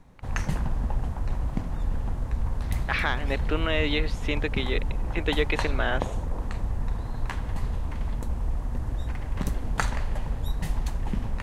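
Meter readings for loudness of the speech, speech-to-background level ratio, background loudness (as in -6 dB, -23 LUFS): -29.0 LUFS, 3.0 dB, -32.0 LUFS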